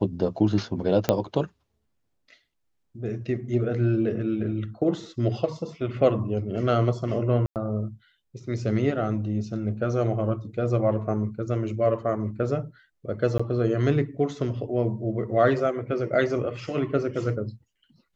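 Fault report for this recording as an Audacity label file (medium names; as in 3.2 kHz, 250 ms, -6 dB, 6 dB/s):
1.090000	1.090000	pop -6 dBFS
7.460000	7.560000	dropout 98 ms
13.380000	13.390000	dropout 15 ms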